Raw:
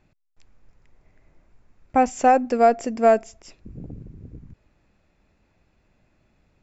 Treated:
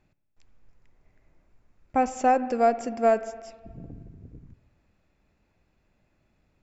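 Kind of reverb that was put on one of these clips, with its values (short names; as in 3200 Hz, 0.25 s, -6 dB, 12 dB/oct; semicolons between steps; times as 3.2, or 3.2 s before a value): spring tank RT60 1.5 s, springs 52/59 ms, chirp 35 ms, DRR 13.5 dB; gain -5 dB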